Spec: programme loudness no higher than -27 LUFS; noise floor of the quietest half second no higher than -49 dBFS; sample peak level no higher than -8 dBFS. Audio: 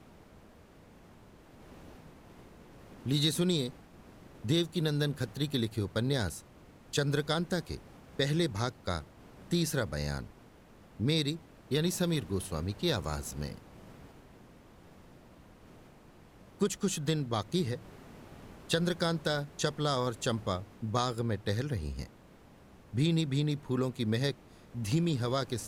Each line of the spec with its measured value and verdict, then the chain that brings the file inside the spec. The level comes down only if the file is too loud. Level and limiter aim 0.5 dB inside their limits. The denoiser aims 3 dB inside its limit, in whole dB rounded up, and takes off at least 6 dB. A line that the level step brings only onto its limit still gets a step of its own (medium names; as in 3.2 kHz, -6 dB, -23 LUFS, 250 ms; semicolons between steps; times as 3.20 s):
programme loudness -32.5 LUFS: pass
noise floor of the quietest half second -56 dBFS: pass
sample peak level -14.0 dBFS: pass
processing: none needed